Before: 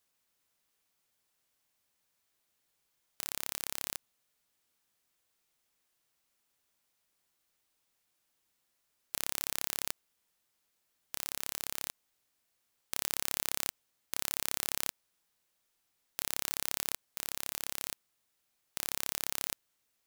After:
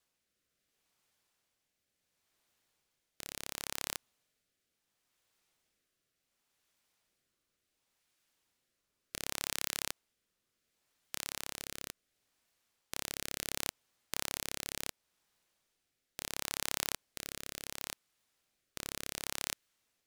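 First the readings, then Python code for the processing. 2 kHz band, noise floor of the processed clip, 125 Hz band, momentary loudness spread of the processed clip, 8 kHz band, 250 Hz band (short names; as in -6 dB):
0.0 dB, -84 dBFS, +1.5 dB, 11 LU, -2.5 dB, +1.5 dB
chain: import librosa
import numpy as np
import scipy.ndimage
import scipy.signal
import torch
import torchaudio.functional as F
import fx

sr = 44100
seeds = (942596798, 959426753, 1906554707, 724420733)

y = fx.rotary(x, sr, hz=0.7)
y = fx.high_shelf(y, sr, hz=9100.0, db=-7.0)
y = y * 10.0 ** (3.5 / 20.0)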